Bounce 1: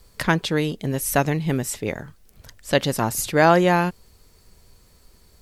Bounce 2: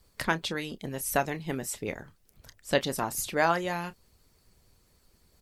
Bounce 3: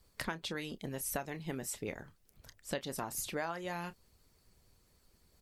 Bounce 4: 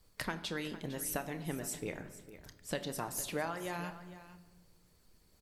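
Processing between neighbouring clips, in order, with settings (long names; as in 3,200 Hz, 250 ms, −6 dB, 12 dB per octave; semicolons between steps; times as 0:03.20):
double-tracking delay 30 ms −12 dB; harmonic and percussive parts rebalanced harmonic −10 dB; level −5.5 dB
downward compressor 6 to 1, threshold −30 dBFS, peak gain reduction 11 dB; level −4 dB
single-tap delay 455 ms −15 dB; rectangular room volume 1,200 cubic metres, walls mixed, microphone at 0.51 metres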